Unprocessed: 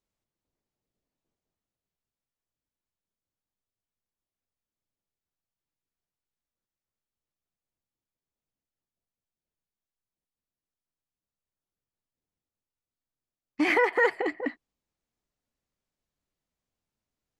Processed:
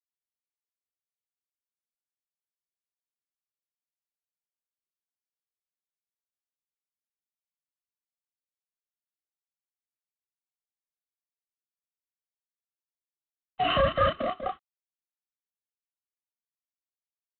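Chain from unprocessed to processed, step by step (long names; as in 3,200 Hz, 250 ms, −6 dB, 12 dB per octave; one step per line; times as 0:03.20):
frequency inversion band by band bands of 1,000 Hz
double-tracking delay 31 ms −2.5 dB
level −2.5 dB
G.726 24 kbit/s 8,000 Hz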